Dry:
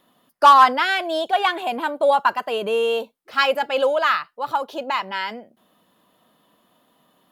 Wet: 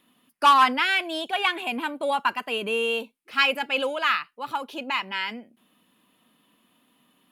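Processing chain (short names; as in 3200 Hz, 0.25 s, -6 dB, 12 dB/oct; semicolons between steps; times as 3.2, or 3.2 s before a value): fifteen-band EQ 250 Hz +7 dB, 630 Hz -6 dB, 2500 Hz +10 dB, 10000 Hz +7 dB; gain -5.5 dB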